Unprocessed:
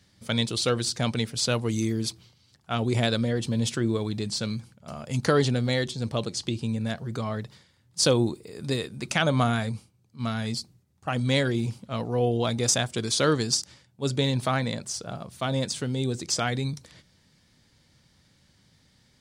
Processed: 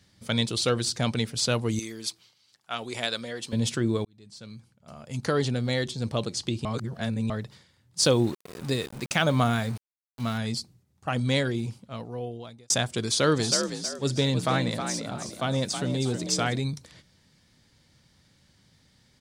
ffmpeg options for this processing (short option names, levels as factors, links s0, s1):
-filter_complex "[0:a]asettb=1/sr,asplit=3[s0][s1][s2];[s0]atrim=end=1.794[s3];[s1]atrim=start=1.79:end=3.53,asetpts=PTS-STARTPTS,afade=t=in:d=0.004:c=qsin,afade=t=out:st=1.736:d=0.004:c=qsin,highpass=f=1000:p=1[s4];[s2]atrim=start=3.526[s5];[s3][s4]acrossfade=d=0.004:c1=hsin:c2=qsin[s6];[s6][s5]acrossfade=d=0.004:c1=qsin:c2=hsin,asettb=1/sr,asplit=3[s7][s8][s9];[s7]atrim=end=8.004[s10];[s8]atrim=start=8:end=10.38,asetpts=PTS-STARTPTS,afade=t=in:d=0.004:c=qsin,afade=t=out:st=2.376:d=0.004:c=qsin,aeval=exprs='val(0)*gte(abs(val(0)),0.0112)':c=same[s11];[s9]atrim=start=10.376[s12];[s10][s11]acrossfade=d=0.004:c1=hsin:c2=qsin[s13];[s13][s12]acrossfade=d=0.004:c1=qsin:c2=hsin,asplit=3[s14][s15][s16];[s14]afade=t=out:st=13.36:d=0.02[s17];[s15]asplit=5[s18][s19][s20][s21][s22];[s19]adelay=319,afreqshift=48,volume=0.422[s23];[s20]adelay=638,afreqshift=96,volume=0.135[s24];[s21]adelay=957,afreqshift=144,volume=0.0432[s25];[s22]adelay=1276,afreqshift=192,volume=0.0138[s26];[s18][s23][s24][s25][s26]amix=inputs=5:normalize=0,afade=t=in:st=13.36:d=0.02,afade=t=out:st=16.59:d=0.02[s27];[s16]afade=t=in:st=16.59:d=0.02[s28];[s17][s27][s28]amix=inputs=3:normalize=0,asplit=5[s29][s30][s31][s32][s33];[s29]atrim=end=4.05,asetpts=PTS-STARTPTS,afade=t=out:st=4.046:d=0.004:c=hsin[s34];[s30]atrim=start=4.05:end=6.652,asetpts=PTS-STARTPTS,afade=t=in:d=2.01[s35];[s31]atrim=start=6.648:end=7.302,asetpts=PTS-STARTPTS,areverse[s36];[s32]atrim=start=7.298:end=12.7,asetpts=PTS-STARTPTS,afade=t=out:st=3.852:d=1.55[s37];[s33]atrim=start=12.7,asetpts=PTS-STARTPTS,afade=t=in:d=0.004:c=hsin[s38];[s34][s35]concat=n=2:v=0:a=1[s39];[s39][s36]acrossfade=d=0.004:c1=hsin:c2=hsin[s40];[s37][s38]concat=n=2:v=0:a=1[s41];[s40][s41]acrossfade=d=0.004:c1=hsin:c2=hsin"